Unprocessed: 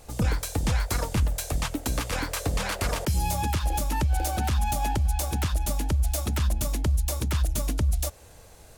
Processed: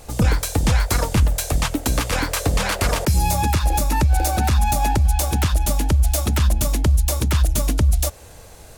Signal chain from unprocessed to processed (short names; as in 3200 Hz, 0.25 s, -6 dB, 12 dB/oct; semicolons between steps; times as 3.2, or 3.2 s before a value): 3.04–5.05 notch 3100 Hz, Q 9.4; gain +7.5 dB